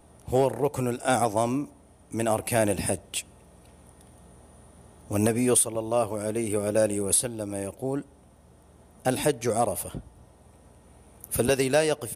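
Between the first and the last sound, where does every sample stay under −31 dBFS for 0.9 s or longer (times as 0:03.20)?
0:03.21–0:05.11
0:08.01–0:09.05
0:09.98–0:11.24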